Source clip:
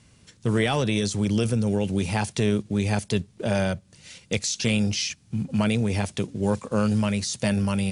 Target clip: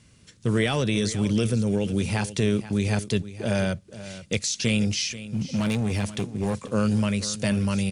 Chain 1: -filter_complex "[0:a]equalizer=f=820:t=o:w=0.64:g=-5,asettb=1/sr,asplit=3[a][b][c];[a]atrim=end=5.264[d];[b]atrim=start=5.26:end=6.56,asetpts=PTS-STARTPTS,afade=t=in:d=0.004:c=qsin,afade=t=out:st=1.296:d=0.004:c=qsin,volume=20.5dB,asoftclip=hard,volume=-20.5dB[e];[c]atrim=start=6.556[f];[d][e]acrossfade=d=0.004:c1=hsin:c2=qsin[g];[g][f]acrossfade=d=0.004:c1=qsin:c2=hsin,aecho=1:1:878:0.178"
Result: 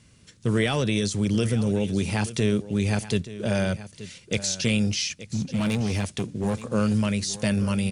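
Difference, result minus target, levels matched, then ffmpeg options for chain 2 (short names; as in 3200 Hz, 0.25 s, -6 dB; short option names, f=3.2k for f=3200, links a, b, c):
echo 0.394 s late
-filter_complex "[0:a]equalizer=f=820:t=o:w=0.64:g=-5,asettb=1/sr,asplit=3[a][b][c];[a]atrim=end=5.264[d];[b]atrim=start=5.26:end=6.56,asetpts=PTS-STARTPTS,afade=t=in:d=0.004:c=qsin,afade=t=out:st=1.296:d=0.004:c=qsin,volume=20.5dB,asoftclip=hard,volume=-20.5dB[e];[c]atrim=start=6.556[f];[d][e]acrossfade=d=0.004:c1=hsin:c2=qsin[g];[g][f]acrossfade=d=0.004:c1=qsin:c2=hsin,aecho=1:1:484:0.178"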